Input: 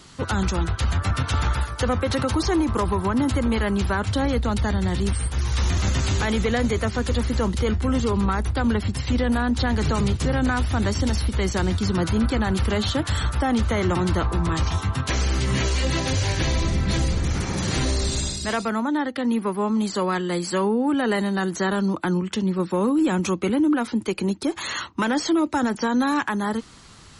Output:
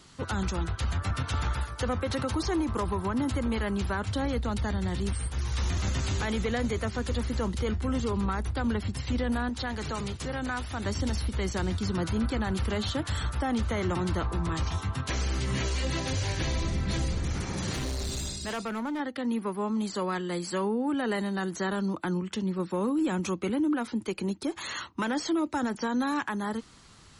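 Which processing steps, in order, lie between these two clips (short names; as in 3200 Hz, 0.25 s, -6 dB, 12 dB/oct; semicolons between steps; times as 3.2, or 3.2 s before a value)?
9.49–10.86 low shelf 350 Hz -7.5 dB; 17.73–19 hard clip -22 dBFS, distortion -25 dB; gain -7 dB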